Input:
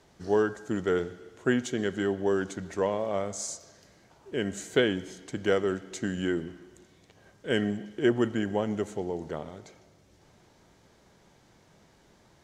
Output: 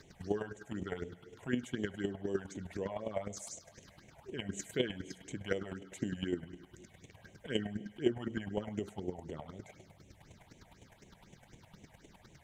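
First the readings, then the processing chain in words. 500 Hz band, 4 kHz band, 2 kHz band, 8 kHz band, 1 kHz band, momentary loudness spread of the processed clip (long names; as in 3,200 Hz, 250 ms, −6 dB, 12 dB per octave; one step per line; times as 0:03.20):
−11.0 dB, −7.5 dB, −11.0 dB, −8.5 dB, −12.0 dB, 22 LU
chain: downward compressor 1.5 to 1, threshold −53 dBFS, peak gain reduction 12.5 dB
hum removal 57.29 Hz, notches 27
all-pass phaser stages 6, 4 Hz, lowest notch 310–1,400 Hz
square-wave tremolo 9.8 Hz, depth 60%, duty 15%
level +9.5 dB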